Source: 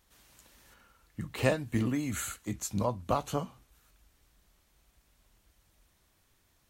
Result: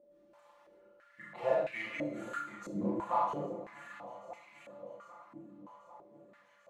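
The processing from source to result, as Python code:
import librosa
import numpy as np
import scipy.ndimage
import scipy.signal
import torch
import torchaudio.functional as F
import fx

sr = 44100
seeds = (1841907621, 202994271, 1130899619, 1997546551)

p1 = fx.notch(x, sr, hz=1600.0, q=25.0)
p2 = p1 + 0.98 * np.pad(p1, (int(5.8 * sr / 1000.0), 0))[:len(p1)]
p3 = 10.0 ** (-26.0 / 20.0) * (np.abs((p2 / 10.0 ** (-26.0 / 20.0) + 3.0) % 4.0 - 2.0) - 1.0)
p4 = p2 + (p3 * librosa.db_to_amplitude(-6.0))
p5 = p4 + 10.0 ** (-46.0 / 20.0) * np.sin(2.0 * np.pi * 580.0 * np.arange(len(p4)) / sr)
p6 = p5 + fx.echo_alternate(p5, sr, ms=397, hz=1100.0, feedback_pct=77, wet_db=-10, dry=0)
p7 = fx.rev_schroeder(p6, sr, rt60_s=0.59, comb_ms=27, drr_db=-3.5)
p8 = fx.filter_held_bandpass(p7, sr, hz=3.0, low_hz=310.0, high_hz=2300.0)
y = p8 * librosa.db_to_amplitude(-1.5)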